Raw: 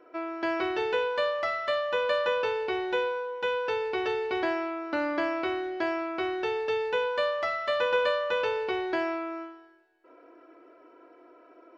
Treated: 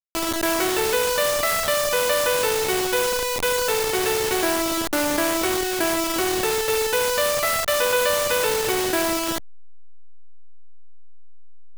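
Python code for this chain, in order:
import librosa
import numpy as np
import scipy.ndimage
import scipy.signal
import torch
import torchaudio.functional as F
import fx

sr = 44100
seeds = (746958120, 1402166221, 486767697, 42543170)

y = fx.delta_hold(x, sr, step_db=-29.5)
y = fx.high_shelf(y, sr, hz=2900.0, db=10.0)
y = fx.env_flatten(y, sr, amount_pct=50)
y = y * 10.0 ** (3.0 / 20.0)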